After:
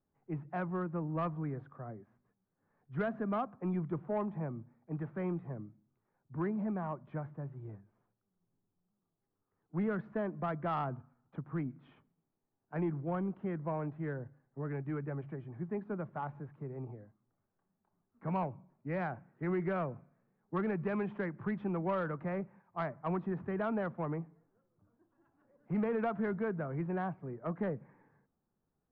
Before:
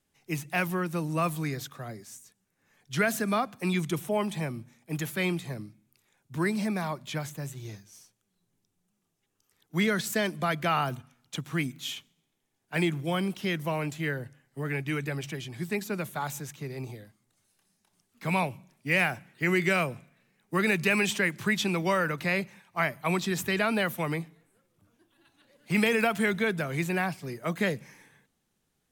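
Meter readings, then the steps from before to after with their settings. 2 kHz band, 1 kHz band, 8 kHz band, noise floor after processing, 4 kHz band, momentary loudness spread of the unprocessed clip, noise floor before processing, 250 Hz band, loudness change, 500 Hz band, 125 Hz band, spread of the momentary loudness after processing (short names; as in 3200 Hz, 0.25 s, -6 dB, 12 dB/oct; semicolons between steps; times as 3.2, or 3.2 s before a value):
-17.5 dB, -7.0 dB, under -40 dB, -85 dBFS, under -25 dB, 15 LU, -77 dBFS, -6.0 dB, -8.5 dB, -6.0 dB, -5.5 dB, 11 LU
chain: LPF 1300 Hz 24 dB/oct; soft clip -20 dBFS, distortion -21 dB; gain -5 dB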